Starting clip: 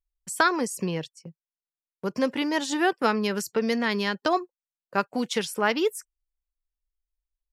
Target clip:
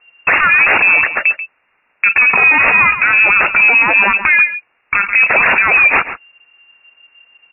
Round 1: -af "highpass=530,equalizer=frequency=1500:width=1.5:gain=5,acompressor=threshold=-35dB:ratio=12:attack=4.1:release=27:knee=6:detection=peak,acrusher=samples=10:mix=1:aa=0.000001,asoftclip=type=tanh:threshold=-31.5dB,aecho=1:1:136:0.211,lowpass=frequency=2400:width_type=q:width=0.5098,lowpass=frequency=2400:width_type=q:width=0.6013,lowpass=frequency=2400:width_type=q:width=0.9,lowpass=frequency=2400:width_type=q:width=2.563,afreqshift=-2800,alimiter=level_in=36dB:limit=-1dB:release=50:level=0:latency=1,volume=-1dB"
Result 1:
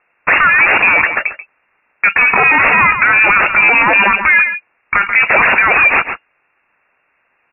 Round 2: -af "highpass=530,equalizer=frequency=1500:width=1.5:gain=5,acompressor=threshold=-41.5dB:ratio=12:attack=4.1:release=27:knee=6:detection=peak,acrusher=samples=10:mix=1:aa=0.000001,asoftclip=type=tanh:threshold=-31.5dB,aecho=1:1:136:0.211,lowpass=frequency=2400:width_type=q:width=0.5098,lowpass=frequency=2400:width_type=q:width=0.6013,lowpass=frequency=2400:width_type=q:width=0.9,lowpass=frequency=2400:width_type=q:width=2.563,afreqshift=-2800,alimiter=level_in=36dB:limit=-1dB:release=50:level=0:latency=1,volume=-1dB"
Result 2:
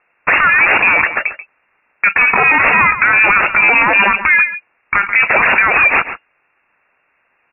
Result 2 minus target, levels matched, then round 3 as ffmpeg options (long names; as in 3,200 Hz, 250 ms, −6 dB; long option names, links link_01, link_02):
500 Hz band +3.0 dB
-af "equalizer=frequency=1500:width=1.5:gain=5,acompressor=threshold=-41.5dB:ratio=12:attack=4.1:release=27:knee=6:detection=peak,acrusher=samples=10:mix=1:aa=0.000001,asoftclip=type=tanh:threshold=-31.5dB,aecho=1:1:136:0.211,lowpass=frequency=2400:width_type=q:width=0.5098,lowpass=frequency=2400:width_type=q:width=0.6013,lowpass=frequency=2400:width_type=q:width=0.9,lowpass=frequency=2400:width_type=q:width=2.563,afreqshift=-2800,alimiter=level_in=36dB:limit=-1dB:release=50:level=0:latency=1,volume=-1dB"